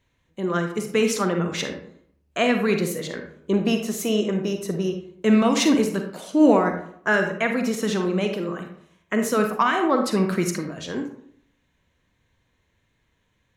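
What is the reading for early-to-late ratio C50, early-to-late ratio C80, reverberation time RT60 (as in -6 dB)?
6.5 dB, 10.0 dB, 0.65 s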